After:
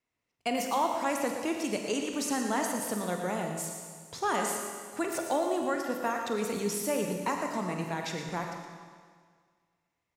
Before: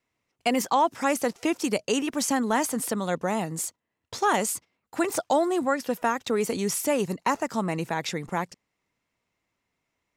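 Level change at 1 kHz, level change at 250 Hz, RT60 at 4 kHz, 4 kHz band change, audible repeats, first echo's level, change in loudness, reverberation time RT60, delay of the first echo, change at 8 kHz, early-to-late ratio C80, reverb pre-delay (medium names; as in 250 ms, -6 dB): -5.0 dB, -5.0 dB, 1.8 s, -5.0 dB, 1, -10.0 dB, -5.0 dB, 1.8 s, 117 ms, -5.0 dB, 3.5 dB, 26 ms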